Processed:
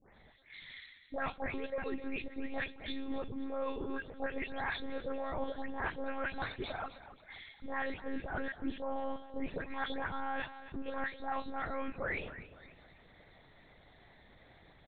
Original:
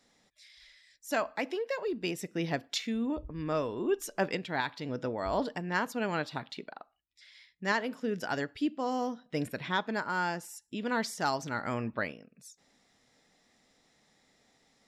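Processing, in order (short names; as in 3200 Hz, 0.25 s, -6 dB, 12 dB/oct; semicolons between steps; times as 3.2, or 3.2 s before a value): spectral delay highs late, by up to 0.307 s; notch 2900 Hz, Q 5.2; reverse; compressor 5:1, threshold -46 dBFS, peak gain reduction 18.5 dB; reverse; feedback echo 0.263 s, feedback 42%, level -14 dB; monotone LPC vocoder at 8 kHz 270 Hz; gain +10 dB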